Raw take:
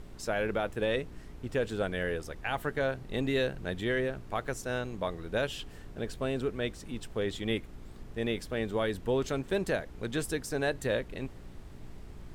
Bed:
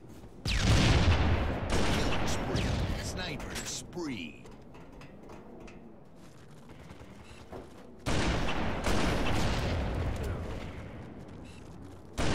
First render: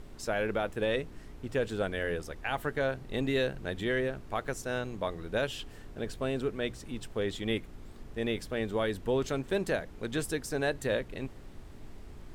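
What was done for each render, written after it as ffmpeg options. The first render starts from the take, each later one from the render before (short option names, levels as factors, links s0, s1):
-af "bandreject=f=60:t=h:w=4,bandreject=f=120:t=h:w=4,bandreject=f=180:t=h:w=4"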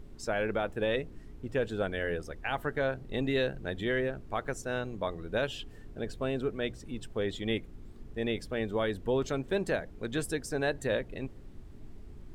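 -af "afftdn=nr=8:nf=-48"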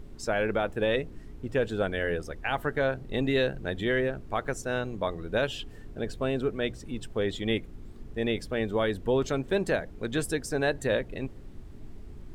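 -af "volume=1.5"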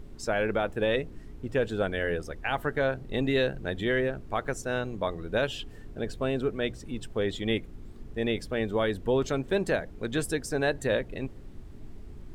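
-af anull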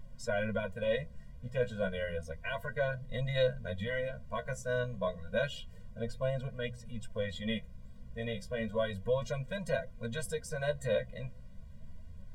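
-af "flanger=delay=7.4:depth=8.8:regen=31:speed=0.31:shape=sinusoidal,afftfilt=real='re*eq(mod(floor(b*sr/1024/230),2),0)':imag='im*eq(mod(floor(b*sr/1024/230),2),0)':win_size=1024:overlap=0.75"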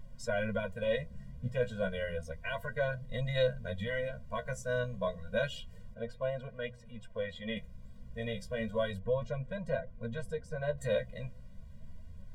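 -filter_complex "[0:a]asettb=1/sr,asplit=3[s0][s1][s2];[s0]atrim=end=1.114[s3];[s1]atrim=start=1.11:end=1.52,asetpts=PTS-STARTPTS,afade=t=in:d=0.004:c=qsin,afade=t=out:st=0.406:d=0.004:c=qsin,equalizer=f=160:t=o:w=2.2:g=7.5[s4];[s2]atrim=start=1.516[s5];[s3][s4]acrossfade=d=0.004:c1=hsin:c2=qsin[s6];[s6][s5]acrossfade=d=0.004:c1=qsin:c2=hsin,asettb=1/sr,asplit=3[s7][s8][s9];[s7]atrim=end=5.944[s10];[s8]atrim=start=5.94:end=7.57,asetpts=PTS-STARTPTS,afade=t=in:d=0.004:c=qsin,afade=t=out:st=1.626:d=0.004:c=qsin,bass=f=250:g=-7,treble=f=4000:g=-11[s11];[s9]atrim=start=7.566[s12];[s10][s11]acrossfade=d=0.004:c1=hsin:c2=qsin[s13];[s13][s12]acrossfade=d=0.004:c1=qsin:c2=hsin,asettb=1/sr,asplit=3[s14][s15][s16];[s14]atrim=end=8.994[s17];[s15]atrim=start=8.99:end=10.78,asetpts=PTS-STARTPTS,afade=t=in:d=0.004:c=qsin,afade=t=out:st=1.786:d=0.004:c=qsin,lowpass=f=1300:p=1[s18];[s16]atrim=start=10.776[s19];[s17][s18]acrossfade=d=0.004:c1=hsin:c2=qsin[s20];[s20][s19]acrossfade=d=0.004:c1=qsin:c2=hsin"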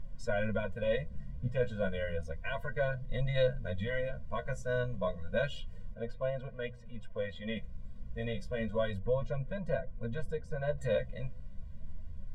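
-af "lowpass=f=3900:p=1,lowshelf=f=60:g=8.5"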